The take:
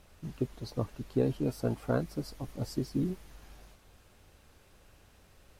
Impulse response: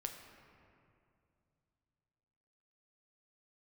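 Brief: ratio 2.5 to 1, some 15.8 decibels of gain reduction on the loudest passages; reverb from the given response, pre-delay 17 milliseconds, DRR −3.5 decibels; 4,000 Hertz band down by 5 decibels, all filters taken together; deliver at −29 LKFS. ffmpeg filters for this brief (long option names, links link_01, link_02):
-filter_complex "[0:a]equalizer=frequency=4000:width_type=o:gain=-6.5,acompressor=threshold=-49dB:ratio=2.5,asplit=2[link_01][link_02];[1:a]atrim=start_sample=2205,adelay=17[link_03];[link_02][link_03]afir=irnorm=-1:irlink=0,volume=5dB[link_04];[link_01][link_04]amix=inputs=2:normalize=0,volume=14dB"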